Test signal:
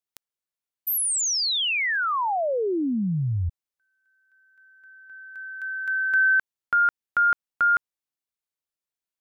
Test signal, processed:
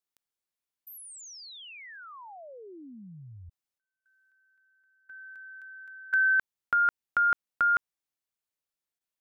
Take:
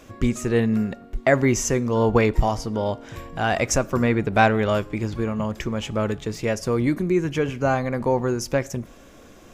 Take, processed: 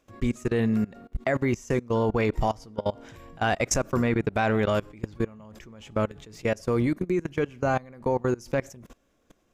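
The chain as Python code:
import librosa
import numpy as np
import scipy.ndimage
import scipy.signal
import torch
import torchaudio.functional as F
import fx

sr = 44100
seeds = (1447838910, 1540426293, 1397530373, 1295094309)

y = fx.level_steps(x, sr, step_db=23)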